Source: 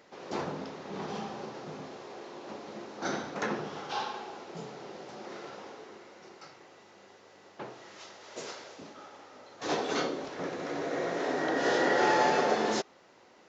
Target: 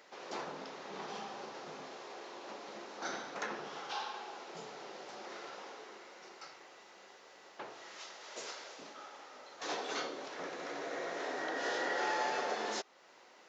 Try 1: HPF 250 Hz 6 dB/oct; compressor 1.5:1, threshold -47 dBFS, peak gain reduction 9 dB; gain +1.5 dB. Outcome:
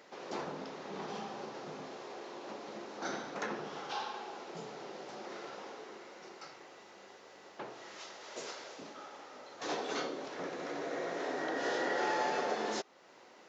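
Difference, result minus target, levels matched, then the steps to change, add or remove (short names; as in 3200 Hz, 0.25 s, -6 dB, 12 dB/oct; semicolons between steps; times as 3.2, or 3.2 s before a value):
250 Hz band +4.0 dB
change: HPF 730 Hz 6 dB/oct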